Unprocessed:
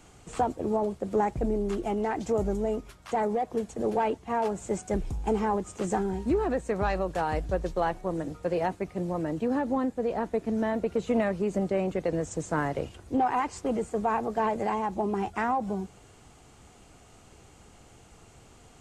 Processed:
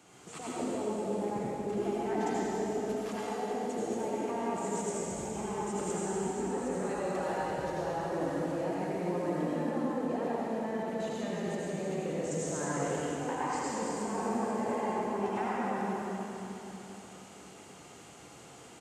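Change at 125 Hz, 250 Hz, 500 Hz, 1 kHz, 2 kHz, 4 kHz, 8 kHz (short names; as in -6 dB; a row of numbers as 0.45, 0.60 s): -4.5, -4.0, -4.5, -5.5, -4.0, +0.5, +4.5 dB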